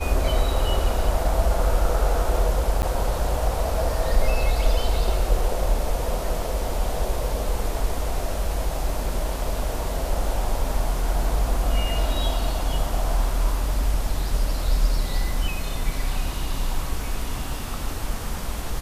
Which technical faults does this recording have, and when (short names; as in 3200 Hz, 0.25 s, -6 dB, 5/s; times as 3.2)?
2.82–2.83 gap 9 ms